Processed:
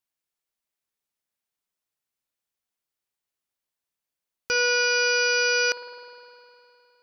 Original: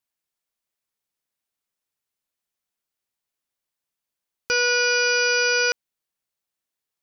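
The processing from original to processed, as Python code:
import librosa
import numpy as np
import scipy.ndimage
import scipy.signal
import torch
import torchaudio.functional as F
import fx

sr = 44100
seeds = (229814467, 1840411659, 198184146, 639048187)

y = fx.rev_spring(x, sr, rt60_s=3.0, pass_ms=(51,), chirp_ms=30, drr_db=9.5)
y = F.gain(torch.from_numpy(y), -2.5).numpy()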